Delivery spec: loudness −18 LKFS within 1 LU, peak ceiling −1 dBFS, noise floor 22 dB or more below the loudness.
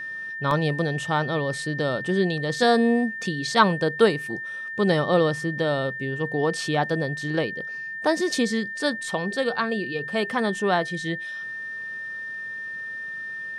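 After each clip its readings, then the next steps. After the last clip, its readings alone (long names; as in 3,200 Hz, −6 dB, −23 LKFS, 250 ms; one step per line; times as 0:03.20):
number of dropouts 1; longest dropout 1.3 ms; interfering tone 1,800 Hz; level of the tone −31 dBFS; integrated loudness −25.0 LKFS; sample peak −4.5 dBFS; target loudness −18.0 LKFS
→ repair the gap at 0:00.51, 1.3 ms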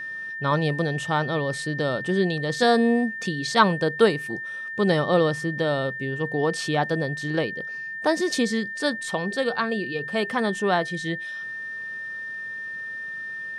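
number of dropouts 0; interfering tone 1,800 Hz; level of the tone −31 dBFS
→ notch filter 1,800 Hz, Q 30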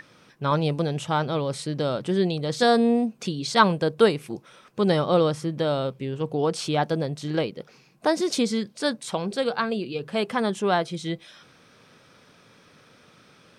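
interfering tone none found; integrated loudness −25.0 LKFS; sample peak −4.5 dBFS; target loudness −18.0 LKFS
→ level +7 dB
brickwall limiter −1 dBFS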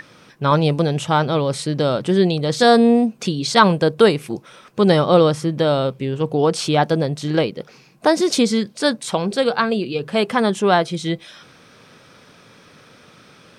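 integrated loudness −18.0 LKFS; sample peak −1.0 dBFS; background noise floor −49 dBFS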